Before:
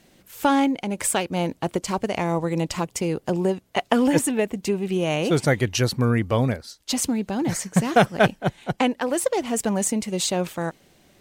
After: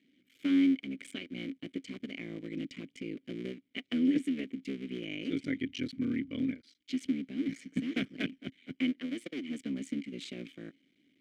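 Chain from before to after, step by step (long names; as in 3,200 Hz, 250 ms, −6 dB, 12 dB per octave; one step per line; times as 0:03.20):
sub-harmonics by changed cycles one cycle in 3, muted
formant filter i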